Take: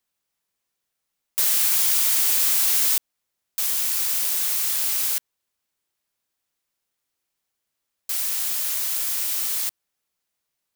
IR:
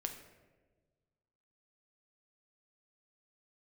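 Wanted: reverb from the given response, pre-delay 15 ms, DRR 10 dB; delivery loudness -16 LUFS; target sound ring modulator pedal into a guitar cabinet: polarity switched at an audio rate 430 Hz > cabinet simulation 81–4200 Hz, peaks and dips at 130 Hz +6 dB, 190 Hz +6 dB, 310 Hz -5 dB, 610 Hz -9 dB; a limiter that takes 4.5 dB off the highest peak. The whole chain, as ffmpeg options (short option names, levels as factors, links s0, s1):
-filter_complex "[0:a]alimiter=limit=0.282:level=0:latency=1,asplit=2[s0][s1];[1:a]atrim=start_sample=2205,adelay=15[s2];[s1][s2]afir=irnorm=-1:irlink=0,volume=0.355[s3];[s0][s3]amix=inputs=2:normalize=0,aeval=exprs='val(0)*sgn(sin(2*PI*430*n/s))':c=same,highpass=81,equalizer=f=130:t=q:w=4:g=6,equalizer=f=190:t=q:w=4:g=6,equalizer=f=310:t=q:w=4:g=-5,equalizer=f=610:t=q:w=4:g=-9,lowpass=f=4200:w=0.5412,lowpass=f=4200:w=1.3066,volume=8.41"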